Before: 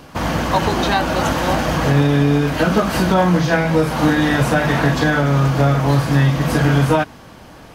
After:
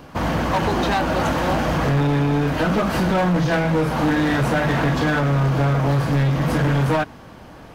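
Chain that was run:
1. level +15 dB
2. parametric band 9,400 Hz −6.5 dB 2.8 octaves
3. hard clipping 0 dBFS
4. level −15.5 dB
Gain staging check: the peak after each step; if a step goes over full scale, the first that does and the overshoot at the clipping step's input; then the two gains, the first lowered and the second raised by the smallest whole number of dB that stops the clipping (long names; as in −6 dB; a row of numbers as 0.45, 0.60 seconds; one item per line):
+10.0, +10.0, 0.0, −15.5 dBFS
step 1, 10.0 dB
step 1 +5 dB, step 4 −5.5 dB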